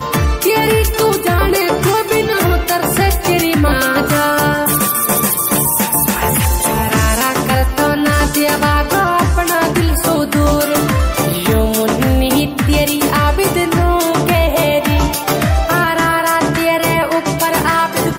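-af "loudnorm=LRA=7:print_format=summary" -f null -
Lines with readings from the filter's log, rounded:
Input Integrated:    -13.5 LUFS
Input True Peak:      -1.4 dBTP
Input LRA:             1.1 LU
Input Threshold:     -23.5 LUFS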